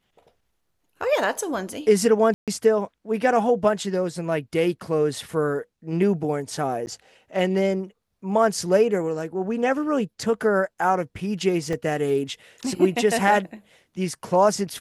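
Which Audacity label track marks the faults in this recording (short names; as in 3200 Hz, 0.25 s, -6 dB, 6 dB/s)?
2.340000	2.480000	gap 0.137 s
6.860000	6.870000	gap 9.9 ms
11.730000	11.730000	gap 2.1 ms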